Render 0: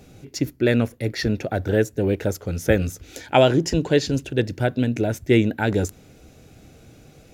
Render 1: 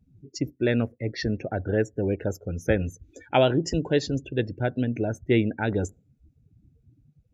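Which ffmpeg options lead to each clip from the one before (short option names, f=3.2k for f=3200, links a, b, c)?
-af "afftdn=nr=32:nf=-35,volume=-4.5dB"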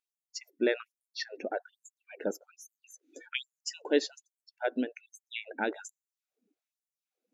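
-af "afftfilt=real='re*gte(b*sr/1024,210*pow(6600/210,0.5+0.5*sin(2*PI*1.2*pts/sr)))':imag='im*gte(b*sr/1024,210*pow(6600/210,0.5+0.5*sin(2*PI*1.2*pts/sr)))':win_size=1024:overlap=0.75,volume=-2.5dB"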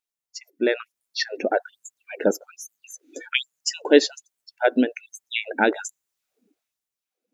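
-af "dynaudnorm=f=160:g=11:m=10dB,volume=2.5dB"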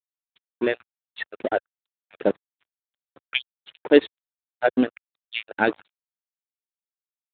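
-af "aeval=exprs='sgn(val(0))*max(abs(val(0))-0.0316,0)':c=same" -ar 8000 -c:a libspeex -b:a 15k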